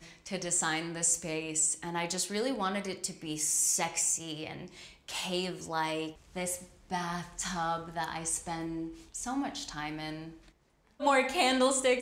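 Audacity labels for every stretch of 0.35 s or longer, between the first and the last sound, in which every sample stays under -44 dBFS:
10.480000	11.000000	silence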